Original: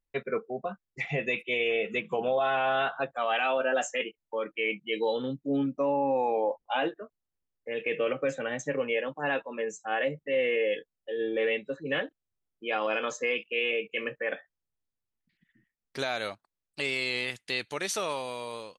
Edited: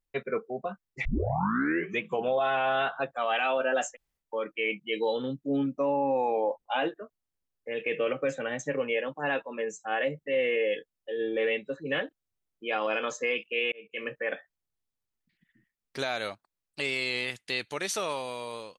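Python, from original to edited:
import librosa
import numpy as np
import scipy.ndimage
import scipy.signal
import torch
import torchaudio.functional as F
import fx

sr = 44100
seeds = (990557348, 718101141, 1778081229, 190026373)

y = fx.edit(x, sr, fx.tape_start(start_s=1.05, length_s=0.96),
    fx.room_tone_fill(start_s=3.92, length_s=0.29, crossfade_s=0.1),
    fx.fade_in_span(start_s=13.72, length_s=0.41), tone=tone)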